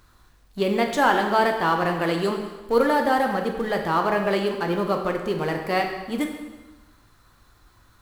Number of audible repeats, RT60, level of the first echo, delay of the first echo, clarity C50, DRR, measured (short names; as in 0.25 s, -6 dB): none, 1.2 s, none, none, 5.5 dB, 3.0 dB